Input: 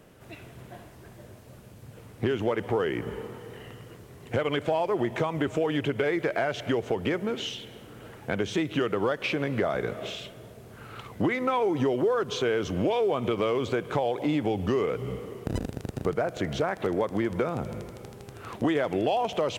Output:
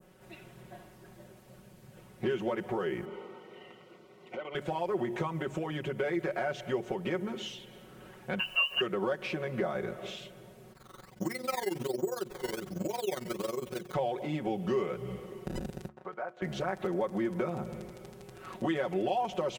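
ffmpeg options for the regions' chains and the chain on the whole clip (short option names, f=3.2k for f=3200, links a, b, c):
-filter_complex "[0:a]asettb=1/sr,asplit=3[a][b][c];[a]atrim=end=3.054[d];[b]atrim=start=3.05:end=4.55,asetpts=PTS-STARTPTS,afade=t=in:d=0.004:c=qsin,afade=t=out:st=1.496:d=0.004:c=qsin,acompressor=threshold=-28dB:ratio=4:attack=3.2:release=140:knee=1:detection=peak,asuperstop=centerf=1700:order=12:qfactor=6.8,acrossover=split=210 5100:gain=0.112 1 0.178[e][f][g];[e][f][g]amix=inputs=3:normalize=0[h];[c]atrim=start=4.546[i];[d][h]acrossfade=d=0.004:c1=hsin:c2=qsin[j];[j][i]acrossfade=d=0.004:c1=qsin:c2=hsin,asettb=1/sr,asplit=3[k][l][m];[k]atrim=end=8.394[n];[l]atrim=start=8.39:end=8.81,asetpts=PTS-STARTPTS,afade=t=in:d=0.004:c=qsin,afade=t=out:st=0.416:d=0.004:c=qsin,lowpass=f=2.6k:t=q:w=0.5098,lowpass=f=2.6k:t=q:w=0.6013,lowpass=f=2.6k:t=q:w=0.9,lowpass=f=2.6k:t=q:w=2.563,afreqshift=-3100,aecho=1:1:1.8:0.5,atrim=end_sample=18522,acrusher=bits=7:mix=0:aa=0.5[o];[m]atrim=start=8.806[p];[n][o]acrossfade=d=0.004:c1=hsin:c2=qsin[q];[q][p]acrossfade=d=0.004:c1=qsin:c2=hsin,asettb=1/sr,asplit=3[r][s][t];[r]atrim=end=10.724[u];[s]atrim=start=10.72:end=13.94,asetpts=PTS-STARTPTS,afade=t=in:d=0.004:c=qsin,afade=t=out:st=3.216:d=0.004:c=qsin,highshelf=f=4.6k:g=-9.5,acrusher=samples=12:mix=1:aa=0.000001:lfo=1:lforange=12:lforate=1.3,tremolo=f=22:d=0.889[v];[t]atrim=start=13.936[w];[u][v]acrossfade=d=0.004:c1=hsin:c2=qsin[x];[x][w]acrossfade=d=0.004:c1=qsin:c2=hsin,asettb=1/sr,asplit=3[y][z][aa];[y]atrim=end=15.884[ab];[z]atrim=start=15.88:end=16.42,asetpts=PTS-STARTPTS,afade=t=in:d=0.004:c=qsin,afade=t=out:st=0.536:d=0.004:c=qsin,agate=range=-33dB:threshold=-34dB:ratio=3:release=100:detection=peak,bandpass=f=1.1k:t=q:w=1.2[ac];[aa]atrim=start=16.416[ad];[ab][ac]acrossfade=d=0.004:c1=hsin:c2=qsin[ae];[ae][ad]acrossfade=d=0.004:c1=qsin:c2=hsin,bandreject=f=71.38:t=h:w=4,bandreject=f=142.76:t=h:w=4,bandreject=f=214.14:t=h:w=4,bandreject=f=285.52:t=h:w=4,bandreject=f=356.9:t=h:w=4,adynamicequalizer=threshold=0.00631:dfrequency=3200:dqfactor=0.77:tfrequency=3200:tqfactor=0.77:attack=5:release=100:ratio=0.375:range=2:mode=cutabove:tftype=bell,aecho=1:1:5.4:0.98,volume=-7.5dB"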